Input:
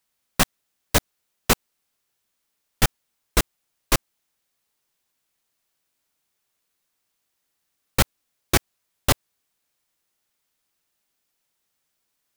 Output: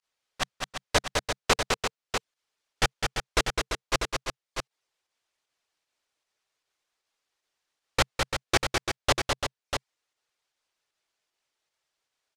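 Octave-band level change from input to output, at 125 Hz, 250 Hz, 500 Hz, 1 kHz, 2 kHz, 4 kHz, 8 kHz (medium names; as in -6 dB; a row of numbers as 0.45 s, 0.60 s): -7.0 dB, -7.0 dB, 0.0 dB, 0.0 dB, 0.0 dB, -0.5 dB, -5.0 dB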